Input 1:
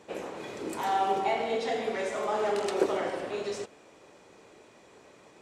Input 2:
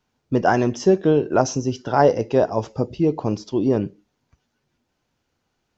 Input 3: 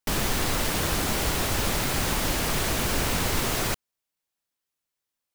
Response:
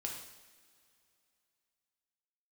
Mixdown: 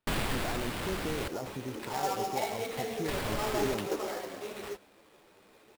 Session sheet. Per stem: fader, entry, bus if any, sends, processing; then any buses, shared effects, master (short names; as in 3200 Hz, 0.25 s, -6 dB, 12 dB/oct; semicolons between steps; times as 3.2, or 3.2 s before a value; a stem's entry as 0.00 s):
-3.0 dB, 1.10 s, no send, high shelf 4300 Hz +9.5 dB; ensemble effect
-14.5 dB, 0.00 s, no send, limiter -13.5 dBFS, peak gain reduction 11 dB
-3.5 dB, 0.00 s, muted 1.28–3.08, no send, auto duck -7 dB, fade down 0.65 s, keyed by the second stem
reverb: off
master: sample-rate reducer 6200 Hz, jitter 20%